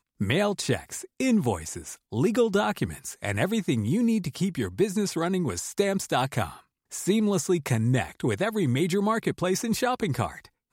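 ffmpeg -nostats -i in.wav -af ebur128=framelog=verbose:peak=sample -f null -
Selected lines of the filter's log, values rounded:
Integrated loudness:
  I:         -26.5 LUFS
  Threshold: -36.7 LUFS
Loudness range:
  LRA:         1.4 LU
  Threshold: -46.7 LUFS
  LRA low:   -27.3 LUFS
  LRA high:  -25.9 LUFS
Sample peak:
  Peak:      -10.6 dBFS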